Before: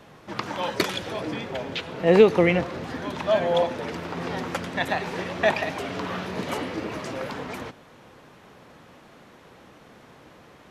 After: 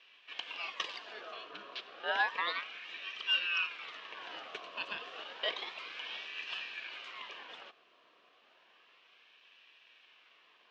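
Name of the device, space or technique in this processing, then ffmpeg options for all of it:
voice changer toy: -af "aeval=exprs='val(0)*sin(2*PI*1500*n/s+1500*0.45/0.31*sin(2*PI*0.31*n/s))':channel_layout=same,highpass=550,equalizer=frequency=580:width_type=q:width=4:gain=-4,equalizer=frequency=840:width_type=q:width=4:gain=-9,equalizer=frequency=1400:width_type=q:width=4:gain=-9,equalizer=frequency=2000:width_type=q:width=4:gain=-8,equalizer=frequency=2900:width_type=q:width=4:gain=5,equalizer=frequency=4600:width_type=q:width=4:gain=-4,lowpass=frequency=4800:width=0.5412,lowpass=frequency=4800:width=1.3066,volume=-7dB"

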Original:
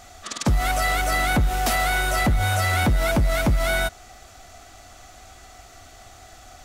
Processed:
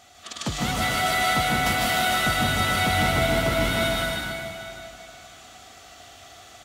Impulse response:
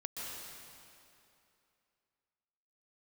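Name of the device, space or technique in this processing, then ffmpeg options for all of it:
PA in a hall: -filter_complex "[0:a]highpass=100,equalizer=frequency=3200:width_type=o:width=0.74:gain=6.5,aecho=1:1:154:0.631[link_01];[1:a]atrim=start_sample=2205[link_02];[link_01][link_02]afir=irnorm=-1:irlink=0,volume=-2.5dB"

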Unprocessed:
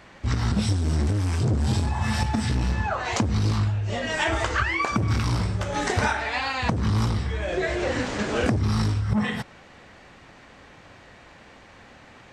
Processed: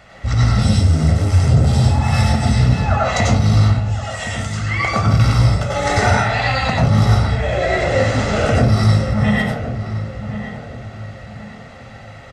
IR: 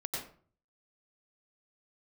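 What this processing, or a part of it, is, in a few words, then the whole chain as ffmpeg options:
microphone above a desk: -filter_complex "[0:a]asettb=1/sr,asplit=3[link_01][link_02][link_03];[link_01]atrim=end=3.804[link_04];[link_02]atrim=start=3.8:end=4.71,asetpts=PTS-STARTPTS,afade=type=in:duration=0.004:curve=qsin,afade=type=out:start_time=0.906:duration=0.004:curve=qsin,aderivative[link_05];[link_03]atrim=start=4.706[link_06];[link_04][link_05]acrossfade=duration=0.004:curve1=hsin:curve2=qsin[link_07];[link_07][link_06]acrossfade=duration=0.004:curve1=qsin:curve2=hsin,aecho=1:1:1.5:0.6[link_08];[1:a]atrim=start_sample=2205[link_09];[link_08][link_09]afir=irnorm=-1:irlink=0,asplit=2[link_10][link_11];[link_11]adelay=1068,lowpass=frequency=1600:poles=1,volume=-10dB,asplit=2[link_12][link_13];[link_13]adelay=1068,lowpass=frequency=1600:poles=1,volume=0.36,asplit=2[link_14][link_15];[link_15]adelay=1068,lowpass=frequency=1600:poles=1,volume=0.36,asplit=2[link_16][link_17];[link_17]adelay=1068,lowpass=frequency=1600:poles=1,volume=0.36[link_18];[link_10][link_12][link_14][link_16][link_18]amix=inputs=5:normalize=0,volume=4.5dB"

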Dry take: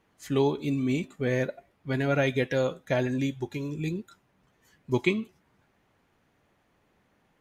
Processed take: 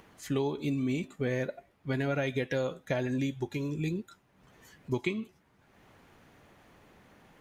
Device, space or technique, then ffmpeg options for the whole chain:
upward and downward compression: -af "acompressor=mode=upward:threshold=-48dB:ratio=2.5,acompressor=threshold=-27dB:ratio=5"

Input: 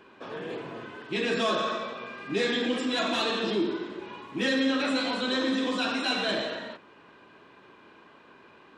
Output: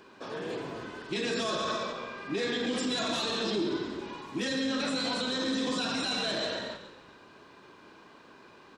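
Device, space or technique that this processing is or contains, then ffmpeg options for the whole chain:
over-bright horn tweeter: -filter_complex "[0:a]asettb=1/sr,asplit=3[link_01][link_02][link_03];[link_01]atrim=end=1.924[link_04];[link_02]atrim=start=1.92:end=2.67,asetpts=PTS-STARTPTS,afade=type=in:duration=0.004:curve=qsin,afade=type=out:start_time=0.746:duration=0.004:curve=qsin,bass=frequency=250:gain=-3,treble=frequency=4000:gain=-8[link_05];[link_03]atrim=start=2.666[link_06];[link_04][link_05]acrossfade=duration=0.004:curve1=hsin:curve2=qsin[link_07];[link_07][link_06]acrossfade=duration=0.004:curve1=qsin:curve2=hsin,highshelf=frequency=3800:width_type=q:width=1.5:gain=6.5,alimiter=limit=-23dB:level=0:latency=1:release=31,asplit=6[link_08][link_09][link_10][link_11][link_12][link_13];[link_09]adelay=138,afreqshift=-47,volume=-11.5dB[link_14];[link_10]adelay=276,afreqshift=-94,volume=-18.4dB[link_15];[link_11]adelay=414,afreqshift=-141,volume=-25.4dB[link_16];[link_12]adelay=552,afreqshift=-188,volume=-32.3dB[link_17];[link_13]adelay=690,afreqshift=-235,volume=-39.2dB[link_18];[link_08][link_14][link_15][link_16][link_17][link_18]amix=inputs=6:normalize=0"

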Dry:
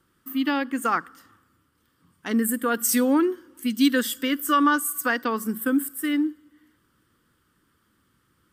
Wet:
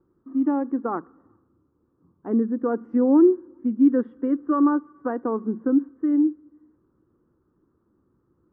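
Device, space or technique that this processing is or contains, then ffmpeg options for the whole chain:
under water: -filter_complex "[0:a]lowpass=frequency=980:width=0.5412,lowpass=frequency=980:width=1.3066,equalizer=frequency=360:width_type=o:width=0.54:gain=8,asettb=1/sr,asplit=3[link_01][link_02][link_03];[link_01]atrim=end=0.994[link_04];[link_02]atrim=start=0.99:end=2.27,asetpts=PTS-STARTPTS,afade=type=in:duration=0.004:curve=qsin,afade=type=out:start_time=1.276:duration=0.004:curve=qsin,lowpass=1700[link_05];[link_03]atrim=start=2.266[link_06];[link_04][link_05]acrossfade=duration=0.004:curve1=hsin:curve2=qsin[link_07];[link_07][link_06]acrossfade=duration=0.004:curve1=qsin:curve2=hsin"

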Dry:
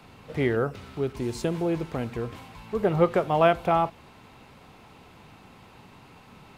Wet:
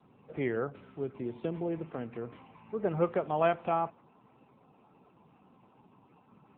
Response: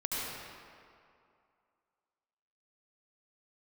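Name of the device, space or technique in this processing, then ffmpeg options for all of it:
mobile call with aggressive noise cancelling: -filter_complex "[0:a]asplit=3[link_01][link_02][link_03];[link_01]afade=type=out:start_time=1.7:duration=0.02[link_04];[link_02]bandreject=frequency=50:width_type=h:width=6,bandreject=frequency=100:width_type=h:width=6,bandreject=frequency=150:width_type=h:width=6,bandreject=frequency=200:width_type=h:width=6,afade=type=in:start_time=1.7:duration=0.02,afade=type=out:start_time=2.26:duration=0.02[link_05];[link_03]afade=type=in:start_time=2.26:duration=0.02[link_06];[link_04][link_05][link_06]amix=inputs=3:normalize=0,highpass=140,afftdn=noise_reduction=23:noise_floor=-50,volume=-6.5dB" -ar 8000 -c:a libopencore_amrnb -b:a 7950

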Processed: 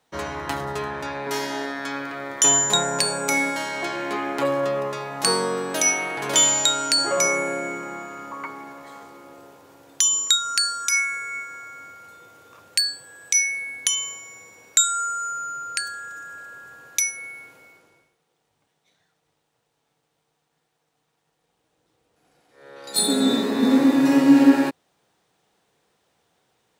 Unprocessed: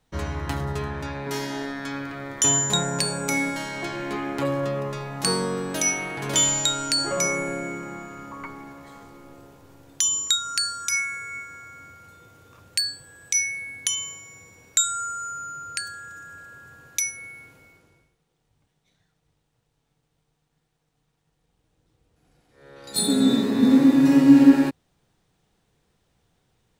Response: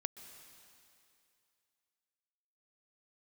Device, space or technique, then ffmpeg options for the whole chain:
filter by subtraction: -filter_complex "[0:a]asplit=2[link_01][link_02];[link_02]lowpass=640,volume=-1[link_03];[link_01][link_03]amix=inputs=2:normalize=0,volume=3dB"

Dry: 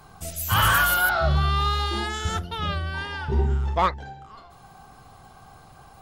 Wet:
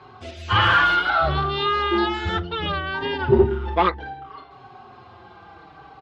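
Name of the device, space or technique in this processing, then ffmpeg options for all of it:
barber-pole flanger into a guitar amplifier: -filter_complex "[0:a]asettb=1/sr,asplit=3[link_01][link_02][link_03];[link_01]atrim=end=3.024[link_04];[link_02]atrim=start=3.02:end=3.44,asetpts=PTS-STARTPTS,afade=type=in:duration=0.004:curve=qsin,afade=type=out:start_time=0.416:duration=0.004:curve=qsin,lowshelf=frequency=450:gain=10.5[link_05];[link_03]atrim=start=3.436[link_06];[link_04][link_05]acrossfade=duration=0.004:curve1=hsin:curve2=qsin[link_07];[link_07][link_06]acrossfade=duration=0.004:curve1=qsin:curve2=hsin,asplit=2[link_08][link_09];[link_09]adelay=4.9,afreqshift=-0.64[link_10];[link_08][link_10]amix=inputs=2:normalize=1,asoftclip=type=tanh:threshold=-15.5dB,highpass=110,equalizer=frequency=150:width_type=q:width=4:gain=-8,equalizer=frequency=210:width_type=q:width=4:gain=-5,equalizer=frequency=360:width_type=q:width=4:gain=7,equalizer=frequency=630:width_type=q:width=4:gain=-4,lowpass=frequency=3800:width=0.5412,lowpass=frequency=3800:width=1.3066,volume=8.5dB"

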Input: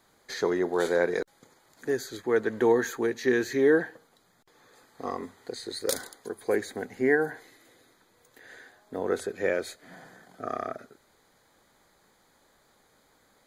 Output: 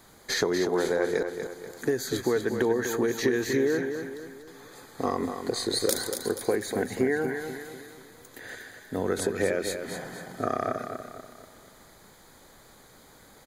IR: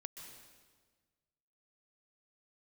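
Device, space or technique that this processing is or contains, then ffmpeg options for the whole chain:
ASMR close-microphone chain: -filter_complex "[0:a]asettb=1/sr,asplit=3[link_01][link_02][link_03];[link_01]atrim=end=8.554[link_04];[link_02]atrim=start=8.55:end=9.17,asetpts=PTS-STARTPTS,afade=type=in:duration=0.004:curve=qsin,afade=type=out:start_time=0.616:duration=0.004:curve=qsin,equalizer=frequency=590:width=0.45:gain=-7[link_05];[link_03]atrim=start=9.166[link_06];[link_04][link_05]acrossfade=duration=0.004:curve1=hsin:curve2=qsin[link_07];[link_07][link_06]acrossfade=duration=0.004:curve1=qsin:curve2=hsin,lowshelf=frequency=250:gain=6.5,acompressor=threshold=-30dB:ratio=10,highshelf=frequency=6600:gain=5.5,aecho=1:1:242|484|726|968|1210:0.422|0.181|0.078|0.0335|0.0144,volume=7.5dB"

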